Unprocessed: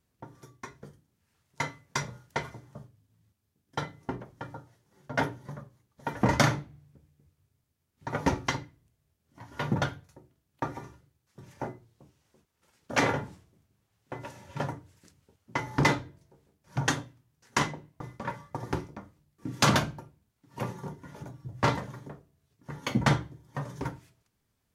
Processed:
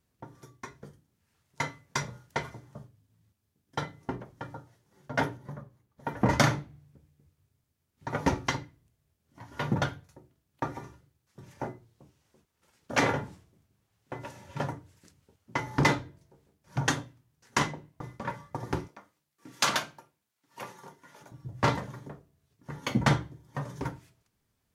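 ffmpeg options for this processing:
ffmpeg -i in.wav -filter_complex "[0:a]asettb=1/sr,asplit=3[link_01][link_02][link_03];[link_01]atrim=end=5.374[link_04];[link_02]atrim=start=5.37:end=6.3,asetpts=PTS-STARTPTS,afade=type=in:duration=0.004:curve=qsin,afade=type=out:start_time=0.926:duration=0.004:curve=qsin,equalizer=frequency=6300:width=0.38:gain=-6.5[link_05];[link_03]atrim=start=6.296[link_06];[link_04][link_05]acrossfade=duration=0.004:curve1=hsin:curve2=qsin[link_07];[link_07][link_06]acrossfade=duration=0.004:curve1=qsin:curve2=hsin,asettb=1/sr,asplit=3[link_08][link_09][link_10];[link_08]atrim=end=18.884[link_11];[link_09]atrim=start=18.88:end=21.32,asetpts=PTS-STARTPTS,afade=type=in:duration=0.004:curve=qsin,afade=type=out:start_time=2.436:duration=0.004:curve=qsin,highpass=frequency=1100:poles=1[link_12];[link_10]atrim=start=21.316[link_13];[link_11][link_12]acrossfade=duration=0.004:curve1=hsin:curve2=qsin[link_14];[link_14][link_13]acrossfade=duration=0.004:curve1=qsin:curve2=hsin" out.wav

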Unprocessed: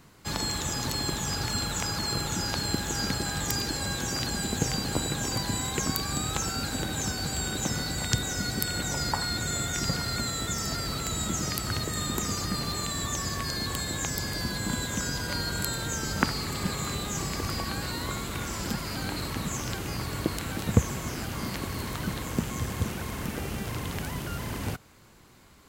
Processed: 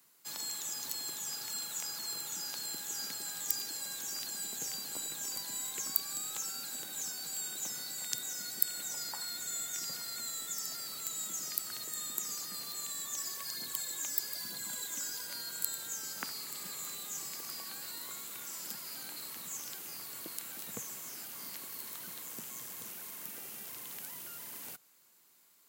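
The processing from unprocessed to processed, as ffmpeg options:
ffmpeg -i in.wav -filter_complex "[0:a]asplit=3[link_01][link_02][link_03];[link_01]afade=type=out:start_time=13.16:duration=0.02[link_04];[link_02]aphaser=in_gain=1:out_gain=1:delay=3.6:decay=0.46:speed=1.1:type=triangular,afade=type=in:start_time=13.16:duration=0.02,afade=type=out:start_time=15.24:duration=0.02[link_05];[link_03]afade=type=in:start_time=15.24:duration=0.02[link_06];[link_04][link_05][link_06]amix=inputs=3:normalize=0,highpass=frequency=130:width=0.5412,highpass=frequency=130:width=1.3066,aemphasis=mode=production:type=riaa,volume=-16.5dB" out.wav

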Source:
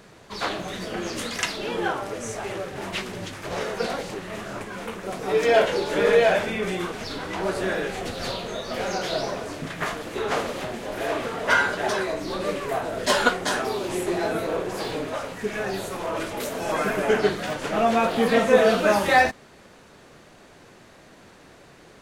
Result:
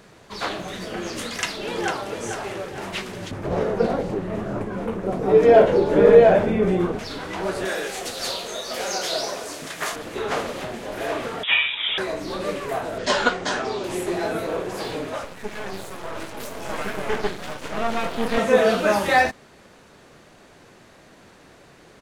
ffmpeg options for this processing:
ffmpeg -i in.wav -filter_complex "[0:a]asplit=2[link_01][link_02];[link_02]afade=type=in:start_time=1.22:duration=0.01,afade=type=out:start_time=2.08:duration=0.01,aecho=0:1:450|900|1350|1800|2250:0.421697|0.168679|0.0674714|0.0269886|0.0107954[link_03];[link_01][link_03]amix=inputs=2:normalize=0,asettb=1/sr,asplit=3[link_04][link_05][link_06];[link_04]atrim=end=3.314[link_07];[link_05]atrim=start=3.31:end=6.99,asetpts=PTS-STARTPTS,afade=type=in:duration=0.004:curve=qsin,afade=type=out:start_time=3.676:duration=0.004:curve=qsin,tiltshelf=frequency=1200:gain=10[link_08];[link_06]atrim=start=6.986[link_09];[link_07][link_08]acrossfade=duration=0.004:curve1=hsin:curve2=qsin[link_10];[link_10][link_09]acrossfade=duration=0.004:curve1=qsin:curve2=hsin,asettb=1/sr,asplit=3[link_11][link_12][link_13];[link_11]atrim=end=7.654[link_14];[link_12]atrim=start=7.65:end=9.96,asetpts=PTS-STARTPTS,afade=type=in:duration=0.004:curve=qsin,afade=type=out:start_time=2.306:duration=0.004:curve=qsin,bass=frequency=250:gain=-11,treble=frequency=4000:gain=10[link_15];[link_13]atrim=start=9.956[link_16];[link_14][link_15]acrossfade=duration=0.004:curve1=hsin:curve2=qsin[link_17];[link_17][link_16]acrossfade=duration=0.004:curve1=qsin:curve2=hsin,asettb=1/sr,asplit=3[link_18][link_19][link_20];[link_18]atrim=end=11.434[link_21];[link_19]atrim=start=11.43:end=11.98,asetpts=PTS-STARTPTS,afade=type=in:duration=0.004:curve=qsin,afade=type=out:start_time=0.546:duration=0.004:curve=qsin,lowpass=frequency=3300:width_type=q:width=0.5098,lowpass=frequency=3300:width_type=q:width=0.6013,lowpass=frequency=3300:width_type=q:width=0.9,lowpass=frequency=3300:width_type=q:width=2.563,afreqshift=-3900[link_22];[link_20]atrim=start=11.976[link_23];[link_21][link_22]acrossfade=duration=0.004:curve1=hsin:curve2=qsin[link_24];[link_24][link_23]acrossfade=duration=0.004:curve1=qsin:curve2=hsin,asettb=1/sr,asplit=3[link_25][link_26][link_27];[link_25]atrim=end=12.984[link_28];[link_26]atrim=start=12.98:end=13.84,asetpts=PTS-STARTPTS,afade=type=in:duration=0.004:curve=qsin,afade=type=out:start_time=0.856:duration=0.004:curve=qsin,lowpass=frequency=7200:width=0.5412,lowpass=frequency=7200:width=1.3066[link_29];[link_27]atrim=start=13.836[link_30];[link_28][link_29]acrossfade=duration=0.004:curve1=hsin:curve2=qsin[link_31];[link_31][link_30]acrossfade=duration=0.004:curve1=qsin:curve2=hsin,asettb=1/sr,asplit=3[link_32][link_33][link_34];[link_32]atrim=end=15.244[link_35];[link_33]atrim=start=15.24:end=18.38,asetpts=PTS-STARTPTS,afade=type=in:duration=0.004:curve=qsin,afade=type=out:start_time=3.136:duration=0.004:curve=qsin,aeval=exprs='max(val(0),0)':channel_layout=same[link_36];[link_34]atrim=start=18.376[link_37];[link_35][link_36]acrossfade=duration=0.004:curve1=hsin:curve2=qsin[link_38];[link_38][link_37]acrossfade=duration=0.004:curve1=qsin:curve2=hsin" out.wav

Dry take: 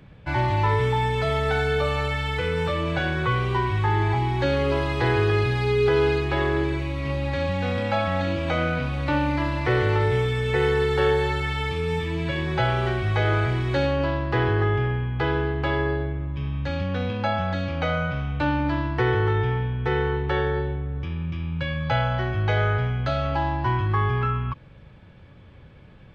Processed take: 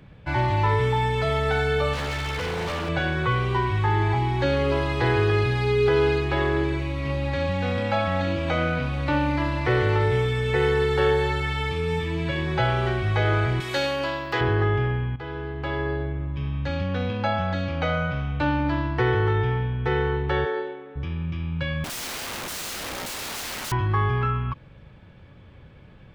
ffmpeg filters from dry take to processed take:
ffmpeg -i in.wav -filter_complex "[0:a]asettb=1/sr,asplit=3[link_01][link_02][link_03];[link_01]atrim=end=1.934[link_04];[link_02]atrim=start=1.93:end=2.89,asetpts=PTS-STARTPTS,afade=type=in:duration=0.004:curve=qsin,afade=type=out:start_time=0.956:duration=0.004:curve=qsin,aeval=exprs='0.0708*(abs(mod(val(0)/0.0708+3,4)-2)-1)':channel_layout=same[link_05];[link_03]atrim=start=2.886[link_06];[link_04][link_05]acrossfade=duration=0.004:curve1=hsin:curve2=qsin[link_07];[link_07][link_06]acrossfade=duration=0.004:curve1=qsin:curve2=hsin,asettb=1/sr,asplit=3[link_08][link_09][link_10];[link_08]atrim=end=13.604[link_11];[link_09]atrim=start=13.6:end=14.41,asetpts=PTS-STARTPTS,afade=type=in:duration=0.004:curve=qsin,afade=type=out:start_time=0.806:duration=0.004:curve=qsin,aemphasis=mode=production:type=riaa[link_12];[link_10]atrim=start=14.406[link_13];[link_11][link_12]acrossfade=duration=0.004:curve1=hsin:curve2=qsin[link_14];[link_14][link_13]acrossfade=duration=0.004:curve1=qsin:curve2=hsin,asplit=3[link_15][link_16][link_17];[link_15]afade=type=out:start_time=20.44:duration=0.02[link_18];[link_16]highpass=frequency=300:width=0.5412,highpass=frequency=300:width=1.3066,afade=type=in:start_time=20.44:duration=0.02,afade=type=out:start_time=20.95:duration=0.02[link_19];[link_17]afade=type=in:start_time=20.95:duration=0.02[link_20];[link_18][link_19][link_20]amix=inputs=3:normalize=0,asettb=1/sr,asplit=3[link_21][link_22][link_23];[link_21]atrim=end=21.844[link_24];[link_22]atrim=start=21.84:end=23.72,asetpts=PTS-STARTPTS,afade=type=in:duration=0.004:curve=qsin,afade=type=out:start_time=1.876:duration=0.004:curve=qsin,aeval=exprs='(mod(25.1*val(0)+1,2)-1)/25.1':channel_layout=same[link_25];[link_23]atrim=start=23.716[link_26];[link_24][link_25]acrossfade=duration=0.004:curve1=hsin:curve2=qsin[link_27];[link_27][link_26]acrossfade=duration=0.004:curve1=qsin:curve2=hsin,asplit=2[link_28][link_29];[link_28]atrim=end=15.16,asetpts=PTS-STARTPTS,afade=type=out:start_time=15.156:duration=0.004:curve=hsin:silence=0.211349[link_30];[link_29]atrim=start=15.16,asetpts=PTS-STARTPTS,afade=type=in:duration=1.05:silence=0.211349[link_31];[link_30][link_31]concat=n=2:v=0:a=1" out.wav

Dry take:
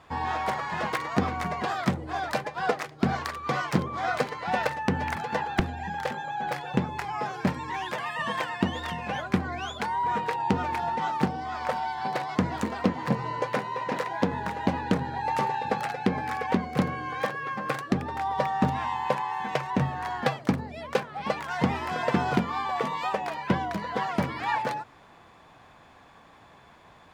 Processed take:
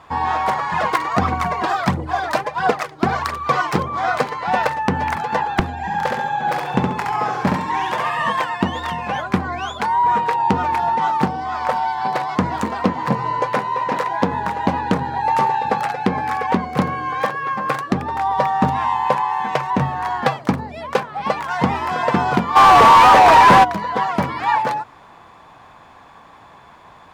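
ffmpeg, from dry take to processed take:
ffmpeg -i in.wav -filter_complex "[0:a]asplit=3[link_01][link_02][link_03];[link_01]afade=type=out:start_time=0.71:duration=0.02[link_04];[link_02]aphaser=in_gain=1:out_gain=1:delay=3.3:decay=0.49:speed=1.5:type=triangular,afade=type=in:start_time=0.71:duration=0.02,afade=type=out:start_time=3.88:duration=0.02[link_05];[link_03]afade=type=in:start_time=3.88:duration=0.02[link_06];[link_04][link_05][link_06]amix=inputs=3:normalize=0,asettb=1/sr,asplit=3[link_07][link_08][link_09];[link_07]atrim=end=5.774[link_10];[link_08]atrim=start=5.77:end=8.3,asetpts=PTS-STARTPTS,afade=type=in:duration=0.004:curve=qsin,afade=type=out:start_time=2.526:duration=0.004:curve=qsin,aecho=1:1:68|136|204|272|340:0.708|0.276|0.108|0.042|0.0164,atrim=end_sample=111573[link_11];[link_09]atrim=start=8.296[link_12];[link_10][link_11]acrossfade=duration=0.004:curve1=hsin:curve2=qsin[link_13];[link_13][link_12]acrossfade=duration=0.004:curve1=qsin:curve2=hsin,asplit=3[link_14][link_15][link_16];[link_14]afade=type=out:start_time=22.55:duration=0.02[link_17];[link_15]asplit=2[link_18][link_19];[link_19]highpass=frequency=720:poles=1,volume=42dB,asoftclip=type=tanh:threshold=-10dB[link_20];[link_18][link_20]amix=inputs=2:normalize=0,lowpass=frequency=1700:poles=1,volume=-6dB,afade=type=in:start_time=22.55:duration=0.02,afade=type=out:start_time=23.63:duration=0.02[link_21];[link_16]afade=type=in:start_time=23.63:duration=0.02[link_22];[link_17][link_21][link_22]amix=inputs=3:normalize=0,equalizer=frequency=1000:width_type=o:width=0.85:gain=6,volume=5.5dB" out.wav

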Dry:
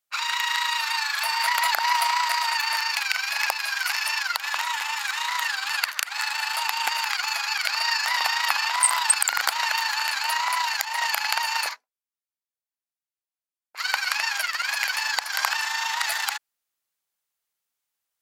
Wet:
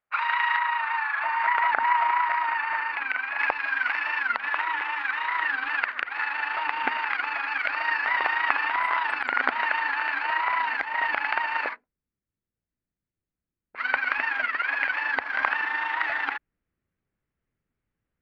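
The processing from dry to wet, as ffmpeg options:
ffmpeg -i in.wav -filter_complex "[0:a]asettb=1/sr,asplit=3[link_01][link_02][link_03];[link_01]atrim=end=0.574[link_04];[link_02]atrim=start=0.57:end=3.39,asetpts=PTS-STARTPTS,afade=type=in:duration=0.004:curve=qsin,afade=type=out:start_time=2.816:duration=0.004:curve=qsin,aemphasis=mode=reproduction:type=75kf[link_05];[link_03]atrim=start=3.386[link_06];[link_04][link_05]acrossfade=duration=0.004:curve1=hsin:curve2=qsin[link_07];[link_07][link_06]acrossfade=duration=0.004:curve1=qsin:curve2=hsin,lowpass=frequency=2100:width=0.5412,lowpass=frequency=2100:width=1.3066,asubboost=boost=12:cutoff=240,volume=5dB" out.wav

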